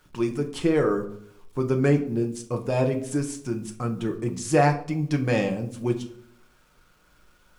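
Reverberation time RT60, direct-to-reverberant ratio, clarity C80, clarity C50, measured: 0.70 s, 3.5 dB, 16.5 dB, 13.0 dB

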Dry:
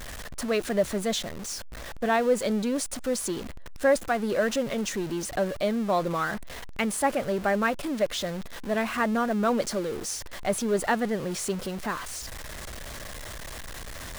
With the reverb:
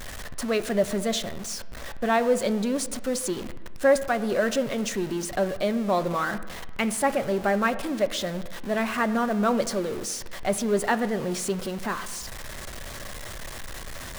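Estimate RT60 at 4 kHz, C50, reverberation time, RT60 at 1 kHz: 0.85 s, 14.5 dB, 1.3 s, 1.3 s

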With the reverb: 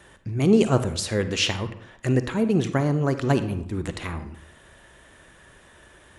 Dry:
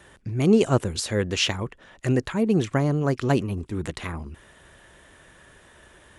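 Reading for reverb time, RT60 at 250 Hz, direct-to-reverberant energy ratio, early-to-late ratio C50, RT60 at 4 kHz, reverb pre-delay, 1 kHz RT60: 0.70 s, 0.70 s, 10.0 dB, 11.5 dB, 0.50 s, 38 ms, 0.70 s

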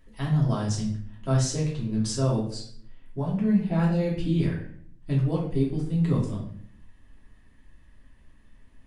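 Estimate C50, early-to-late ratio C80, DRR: 4.5 dB, 8.5 dB, −5.0 dB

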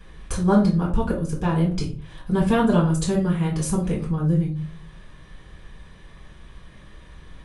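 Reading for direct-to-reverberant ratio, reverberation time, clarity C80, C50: −4.5 dB, 0.40 s, 13.5 dB, 7.5 dB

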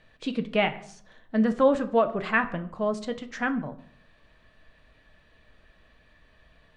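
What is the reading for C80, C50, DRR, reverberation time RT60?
18.5 dB, 15.5 dB, 7.5 dB, 0.60 s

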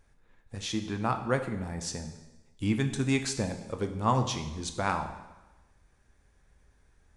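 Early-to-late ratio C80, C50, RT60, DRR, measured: 11.0 dB, 9.0 dB, 1.1 s, 6.0 dB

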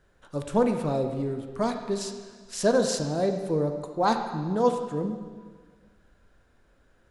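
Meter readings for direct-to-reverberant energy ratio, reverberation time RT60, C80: 5.0 dB, 1.6 s, 8.0 dB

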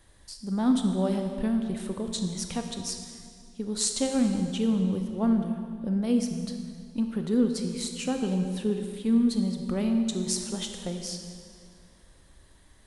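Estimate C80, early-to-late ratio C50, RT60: 6.5 dB, 5.5 dB, 2.2 s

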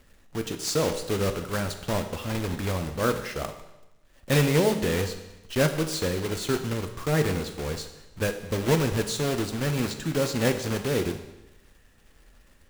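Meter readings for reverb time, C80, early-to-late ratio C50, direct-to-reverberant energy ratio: 1.0 s, 11.5 dB, 9.5 dB, 6.5 dB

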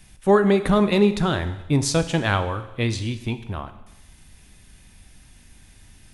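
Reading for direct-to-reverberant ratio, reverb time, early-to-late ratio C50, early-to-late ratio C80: 10.0 dB, 1.0 s, 12.5 dB, 14.5 dB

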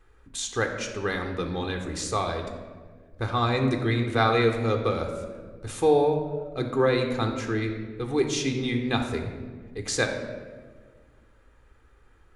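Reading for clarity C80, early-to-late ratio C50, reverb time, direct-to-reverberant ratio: 8.5 dB, 6.5 dB, 1.6 s, 4.5 dB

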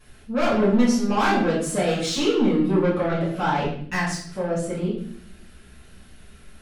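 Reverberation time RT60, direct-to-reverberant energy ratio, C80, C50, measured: 0.65 s, −9.5 dB, 7.0 dB, 3.5 dB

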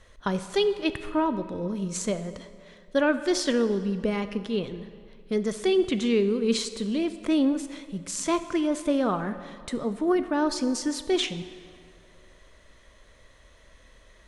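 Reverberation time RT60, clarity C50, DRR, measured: 2.1 s, 12.0 dB, 11.0 dB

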